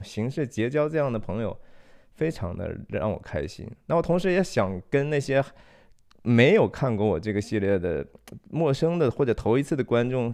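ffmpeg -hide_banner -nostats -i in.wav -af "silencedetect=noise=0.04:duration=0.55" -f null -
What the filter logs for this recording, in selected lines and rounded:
silence_start: 1.52
silence_end: 2.21 | silence_duration: 0.69
silence_start: 5.43
silence_end: 6.26 | silence_duration: 0.84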